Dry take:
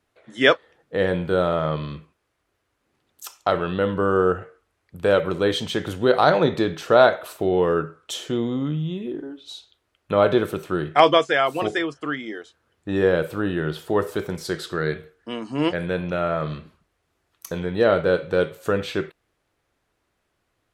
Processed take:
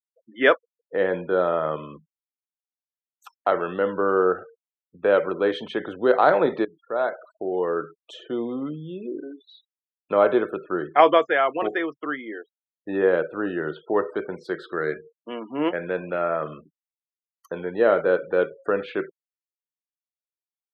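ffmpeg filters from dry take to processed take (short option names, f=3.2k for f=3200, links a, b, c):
-filter_complex "[0:a]asplit=2[a][b];[a]atrim=end=6.65,asetpts=PTS-STARTPTS,afade=t=out:st=6.646:d=0.004:c=hsin:silence=0.11885[c];[b]atrim=start=6.65,asetpts=PTS-STARTPTS,afade=t=in:d=2.46:c=qsin:silence=0.11885[d];[c][d]concat=n=2:v=0:a=1,afftfilt=real='re*gte(hypot(re,im),0.0141)':imag='im*gte(hypot(re,im),0.0141)':win_size=1024:overlap=0.75,acrossover=split=230 2700:gain=0.0891 1 0.0794[e][f][g];[e][f][g]amix=inputs=3:normalize=0"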